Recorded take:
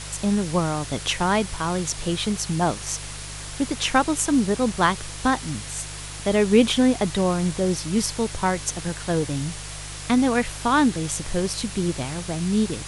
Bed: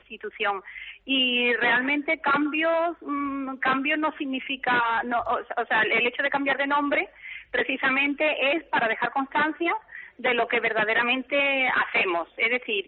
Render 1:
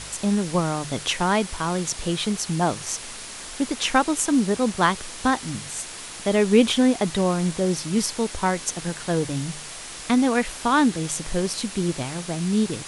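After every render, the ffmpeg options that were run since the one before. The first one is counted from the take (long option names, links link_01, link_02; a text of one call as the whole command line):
ffmpeg -i in.wav -af "bandreject=frequency=50:width_type=h:width=4,bandreject=frequency=100:width_type=h:width=4,bandreject=frequency=150:width_type=h:width=4" out.wav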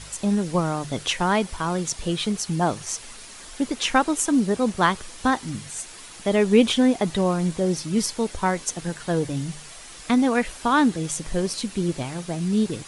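ffmpeg -i in.wav -af "afftdn=noise_reduction=7:noise_floor=-37" out.wav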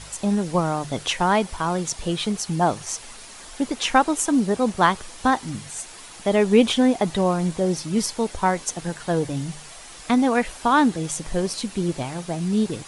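ffmpeg -i in.wav -af "equalizer=frequency=790:width=1.5:gain=4" out.wav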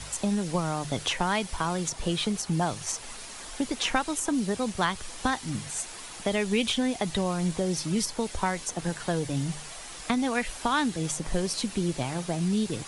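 ffmpeg -i in.wav -filter_complex "[0:a]acrossover=split=130|1800[link_01][link_02][link_03];[link_02]acompressor=threshold=-26dB:ratio=6[link_04];[link_03]alimiter=limit=-18dB:level=0:latency=1:release=197[link_05];[link_01][link_04][link_05]amix=inputs=3:normalize=0" out.wav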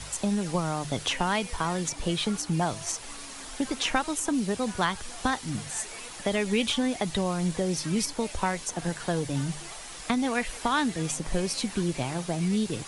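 ffmpeg -i in.wav -i bed.wav -filter_complex "[1:a]volume=-24.5dB[link_01];[0:a][link_01]amix=inputs=2:normalize=0" out.wav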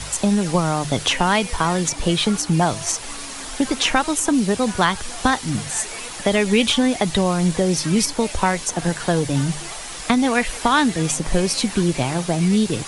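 ffmpeg -i in.wav -af "volume=9dB,alimiter=limit=-3dB:level=0:latency=1" out.wav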